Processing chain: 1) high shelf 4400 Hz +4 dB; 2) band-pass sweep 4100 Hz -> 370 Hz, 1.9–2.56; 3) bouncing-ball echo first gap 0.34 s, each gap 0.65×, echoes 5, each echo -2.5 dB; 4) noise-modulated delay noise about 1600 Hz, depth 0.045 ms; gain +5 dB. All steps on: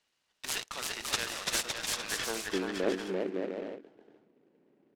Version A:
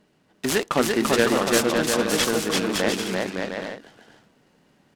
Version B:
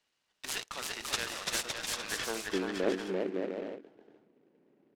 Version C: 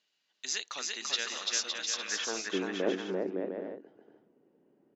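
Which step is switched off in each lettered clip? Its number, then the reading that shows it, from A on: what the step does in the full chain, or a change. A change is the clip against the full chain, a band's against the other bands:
2, 8 kHz band -5.5 dB; 1, 8 kHz band -2.0 dB; 4, 1 kHz band -2.5 dB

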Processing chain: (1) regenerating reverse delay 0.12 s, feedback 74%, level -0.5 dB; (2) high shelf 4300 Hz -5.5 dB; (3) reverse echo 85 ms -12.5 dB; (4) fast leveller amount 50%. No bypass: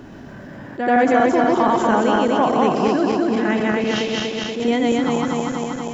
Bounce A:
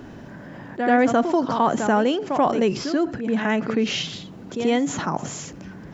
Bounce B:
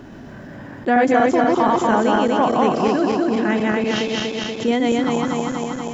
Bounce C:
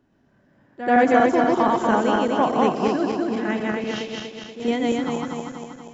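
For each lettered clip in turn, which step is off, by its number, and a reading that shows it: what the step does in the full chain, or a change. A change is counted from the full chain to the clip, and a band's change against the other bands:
1, 4 kHz band +1.5 dB; 3, momentary loudness spread change +2 LU; 4, crest factor change +3.0 dB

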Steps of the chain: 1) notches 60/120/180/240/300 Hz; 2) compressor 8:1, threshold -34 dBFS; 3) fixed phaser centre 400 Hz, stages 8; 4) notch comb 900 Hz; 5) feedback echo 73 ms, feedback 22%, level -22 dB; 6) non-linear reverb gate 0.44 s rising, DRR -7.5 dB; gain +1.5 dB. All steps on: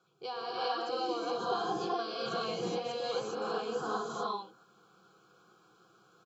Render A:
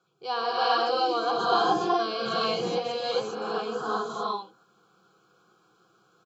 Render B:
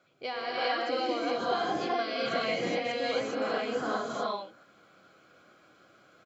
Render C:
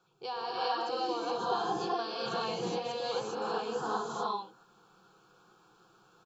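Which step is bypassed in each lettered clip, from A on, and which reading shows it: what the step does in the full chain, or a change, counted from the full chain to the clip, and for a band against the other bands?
2, mean gain reduction 5.5 dB; 3, 2 kHz band +6.0 dB; 4, loudness change +1.0 LU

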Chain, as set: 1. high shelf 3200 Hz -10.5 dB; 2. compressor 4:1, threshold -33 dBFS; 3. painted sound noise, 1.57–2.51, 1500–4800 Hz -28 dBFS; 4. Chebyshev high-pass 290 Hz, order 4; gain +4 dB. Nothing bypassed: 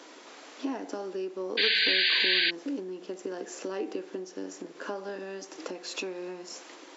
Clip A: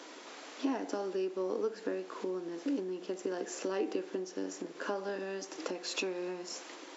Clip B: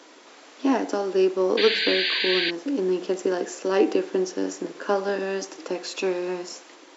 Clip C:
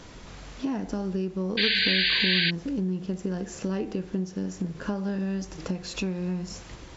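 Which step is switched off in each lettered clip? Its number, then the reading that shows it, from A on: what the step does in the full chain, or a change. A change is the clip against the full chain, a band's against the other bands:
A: 3, 4 kHz band -18.5 dB; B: 2, mean gain reduction 8.5 dB; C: 4, 250 Hz band +8.5 dB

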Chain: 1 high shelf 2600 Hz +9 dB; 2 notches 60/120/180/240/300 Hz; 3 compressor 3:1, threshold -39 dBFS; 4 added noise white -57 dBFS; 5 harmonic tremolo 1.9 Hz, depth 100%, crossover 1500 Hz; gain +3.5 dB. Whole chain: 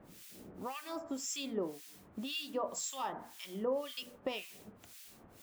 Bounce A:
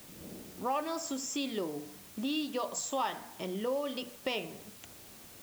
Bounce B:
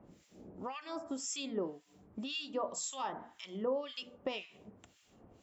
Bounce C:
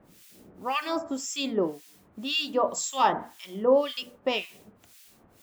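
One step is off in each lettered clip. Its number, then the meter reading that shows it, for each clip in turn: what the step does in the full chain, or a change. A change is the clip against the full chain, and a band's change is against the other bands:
5, loudness change +4.0 LU; 4, momentary loudness spread change +1 LU; 3, mean gain reduction 8.5 dB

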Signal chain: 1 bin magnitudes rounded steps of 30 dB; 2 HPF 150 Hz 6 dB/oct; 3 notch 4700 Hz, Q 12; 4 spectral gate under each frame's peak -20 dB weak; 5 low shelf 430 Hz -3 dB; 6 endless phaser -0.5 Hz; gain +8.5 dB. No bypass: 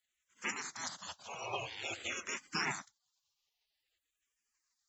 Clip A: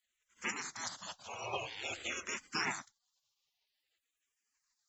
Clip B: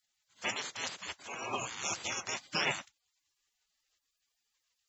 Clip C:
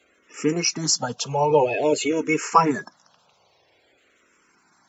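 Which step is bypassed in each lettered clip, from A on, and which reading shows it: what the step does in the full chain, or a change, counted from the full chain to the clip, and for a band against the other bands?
2, 125 Hz band -2.0 dB; 6, 4 kHz band +2.5 dB; 4, 2 kHz band -13.5 dB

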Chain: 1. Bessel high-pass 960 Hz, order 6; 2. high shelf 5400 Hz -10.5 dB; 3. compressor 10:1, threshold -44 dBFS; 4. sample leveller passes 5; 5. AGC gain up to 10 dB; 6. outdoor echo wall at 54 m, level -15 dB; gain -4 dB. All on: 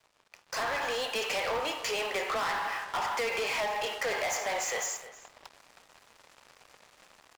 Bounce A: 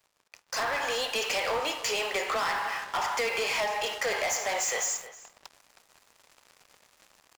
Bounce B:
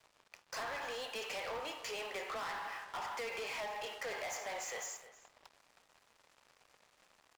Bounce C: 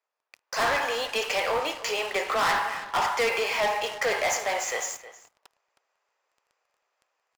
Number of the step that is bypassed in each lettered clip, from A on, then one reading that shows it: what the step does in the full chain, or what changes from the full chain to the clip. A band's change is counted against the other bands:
2, 8 kHz band +3.5 dB; 5, momentary loudness spread change +2 LU; 3, mean gain reduction 2.0 dB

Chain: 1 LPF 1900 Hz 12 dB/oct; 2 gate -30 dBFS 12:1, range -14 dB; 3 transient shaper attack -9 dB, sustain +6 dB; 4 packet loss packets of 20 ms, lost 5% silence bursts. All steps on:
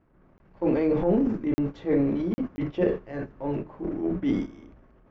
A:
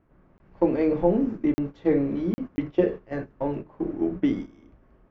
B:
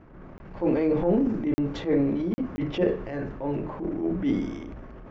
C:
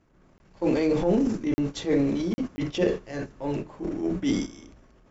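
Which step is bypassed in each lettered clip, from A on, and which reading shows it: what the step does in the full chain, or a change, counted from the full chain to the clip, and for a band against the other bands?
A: 3, crest factor change +2.5 dB; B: 2, momentary loudness spread change +3 LU; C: 1, 2 kHz band +3.5 dB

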